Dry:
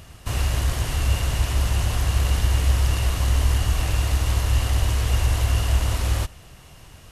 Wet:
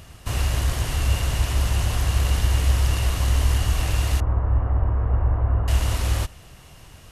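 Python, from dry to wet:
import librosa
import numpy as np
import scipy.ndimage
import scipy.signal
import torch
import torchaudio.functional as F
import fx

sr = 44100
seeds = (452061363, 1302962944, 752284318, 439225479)

y = fx.lowpass(x, sr, hz=1300.0, slope=24, at=(4.2, 5.68))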